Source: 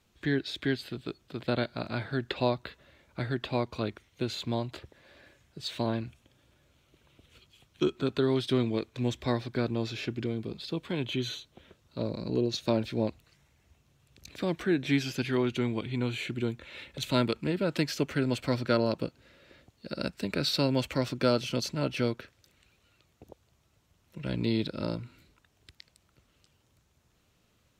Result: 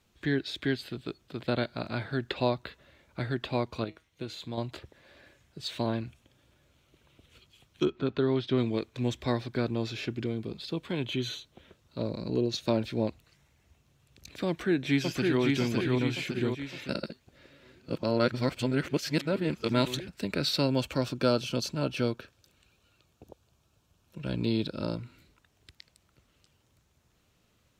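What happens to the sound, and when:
3.84–4.58 s: feedback comb 160 Hz, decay 0.23 s
7.85–8.58 s: distance through air 170 m
14.48–15.42 s: echo throw 560 ms, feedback 55%, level -2 dB
16.89–20.08 s: reverse
20.66–24.96 s: band-stop 2 kHz, Q 5.3

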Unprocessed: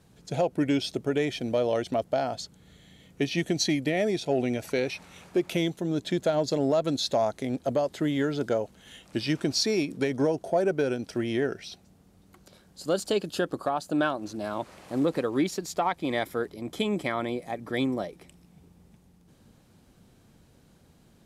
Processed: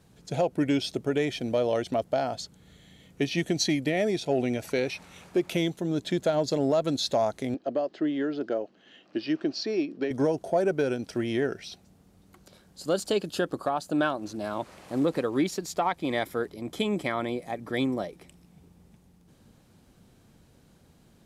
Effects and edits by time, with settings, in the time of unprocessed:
7.54–10.11 s: cabinet simulation 300–4200 Hz, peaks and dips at 320 Hz +5 dB, 480 Hz -4 dB, 920 Hz -8 dB, 1.4 kHz -4 dB, 2.2 kHz -8 dB, 3.6 kHz -9 dB

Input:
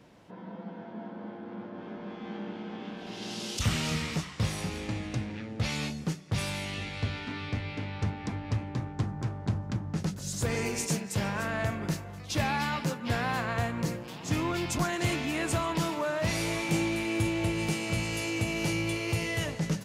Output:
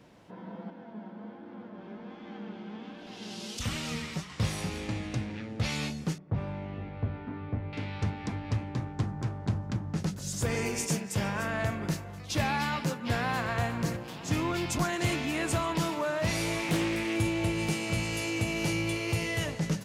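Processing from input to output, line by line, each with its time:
0.70–4.30 s: flange 1.3 Hz, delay 3.2 ms, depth 2.2 ms, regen +47%
6.18–7.73 s: low-pass 1 kHz
10.28–11.60 s: band-stop 4.1 kHz
13.06–13.60 s: echo throw 360 ms, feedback 35%, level -12.5 dB
16.59–17.16 s: loudspeaker Doppler distortion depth 0.54 ms

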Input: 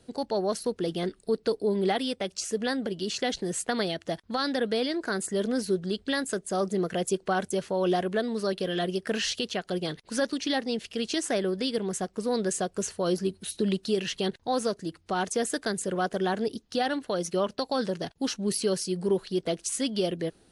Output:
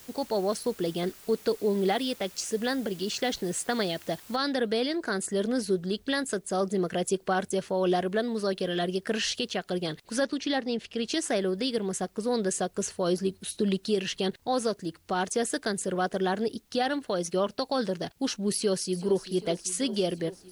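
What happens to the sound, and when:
4.36 s: noise floor step -51 dB -70 dB
10.24–11.08 s: treble shelf 7.1 kHz -10.5 dB
18.53–19.23 s: echo throw 390 ms, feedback 75%, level -14.5 dB

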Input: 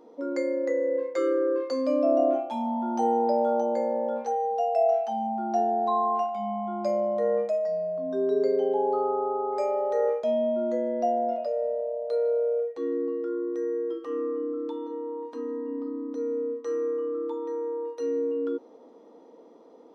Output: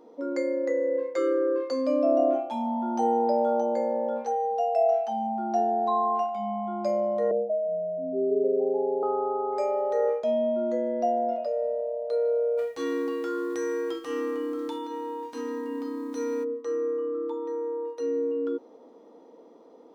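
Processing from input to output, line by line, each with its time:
7.31–9.03 s: elliptic low-pass 750 Hz
12.57–16.43 s: formants flattened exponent 0.6

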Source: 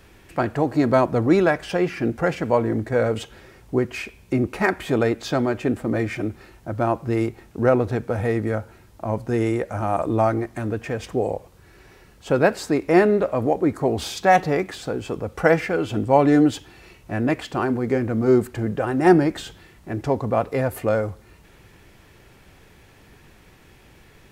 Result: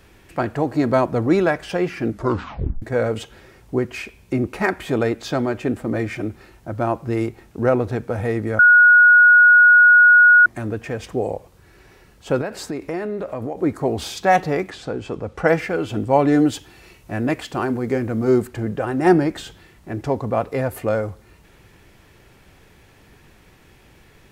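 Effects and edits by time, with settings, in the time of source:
2.07 s: tape stop 0.75 s
8.59–10.46 s: bleep 1.45 kHz -7 dBFS
12.41–13.60 s: compression, threshold -23 dBFS
14.70–15.48 s: distance through air 54 m
16.39–18.42 s: treble shelf 5.6 kHz +5 dB

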